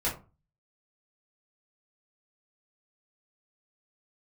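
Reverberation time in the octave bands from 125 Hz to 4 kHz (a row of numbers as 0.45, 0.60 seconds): 0.50, 0.40, 0.35, 0.30, 0.25, 0.15 seconds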